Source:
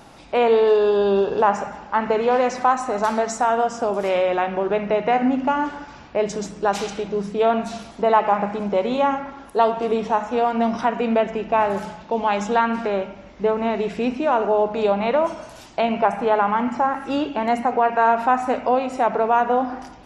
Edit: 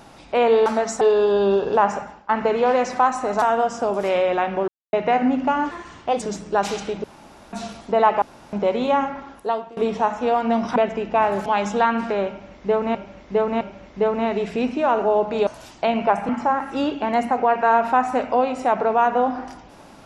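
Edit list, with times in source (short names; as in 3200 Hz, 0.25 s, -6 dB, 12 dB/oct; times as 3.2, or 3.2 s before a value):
1.62–1.94 fade out, to -18.5 dB
3.07–3.42 move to 0.66
4.68–4.93 mute
5.71–6.32 speed 120%
7.14–7.63 room tone
8.32–8.63 room tone
9.33–9.87 fade out, to -23.5 dB
10.86–11.14 cut
11.84–12.21 cut
13.04–13.7 loop, 3 plays
14.9–15.42 cut
16.24–16.63 cut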